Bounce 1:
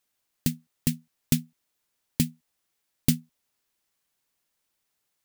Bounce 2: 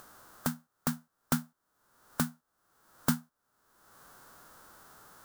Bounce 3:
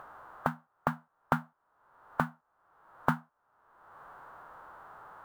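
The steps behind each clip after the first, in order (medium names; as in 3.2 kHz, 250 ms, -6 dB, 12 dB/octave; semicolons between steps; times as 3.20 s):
formants flattened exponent 0.3; resonant high shelf 1.8 kHz -9 dB, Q 3; upward compressor, threshold -29 dBFS; trim -2 dB
FFT filter 150 Hz 0 dB, 220 Hz -5 dB, 910 Hz +11 dB, 2.9 kHz -4 dB, 5.3 kHz -20 dB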